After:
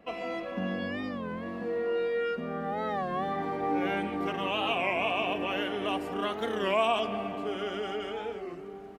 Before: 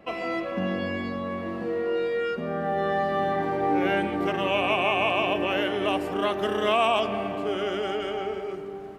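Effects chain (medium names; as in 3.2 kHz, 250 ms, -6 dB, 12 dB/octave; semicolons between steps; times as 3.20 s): comb 4.2 ms, depth 39%; warped record 33 1/3 rpm, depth 160 cents; trim -5.5 dB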